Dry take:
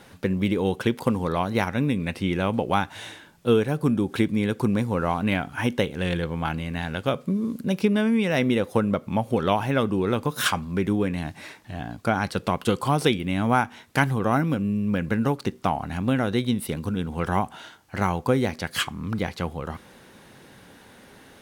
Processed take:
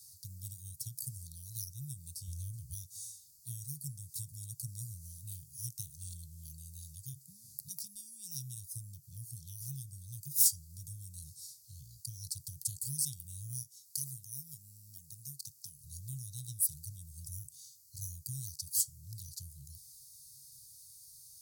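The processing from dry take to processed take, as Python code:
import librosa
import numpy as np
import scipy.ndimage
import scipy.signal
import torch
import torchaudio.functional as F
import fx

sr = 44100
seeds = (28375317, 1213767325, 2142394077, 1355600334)

y = fx.peak_eq(x, sr, hz=72.0, db=12.5, octaves=0.78, at=(2.27, 2.74))
y = fx.highpass(y, sr, hz=320.0, slope=6, at=(13.62, 15.84))
y = fx.dynamic_eq(y, sr, hz=4100.0, q=1.7, threshold_db=-49.0, ratio=4.0, max_db=-7)
y = scipy.signal.sosfilt(scipy.signal.cheby1(5, 1.0, [140.0, 4500.0], 'bandstop', fs=sr, output='sos'), y)
y = librosa.effects.preemphasis(y, coef=0.9, zi=[0.0])
y = y * 10.0 ** (6.0 / 20.0)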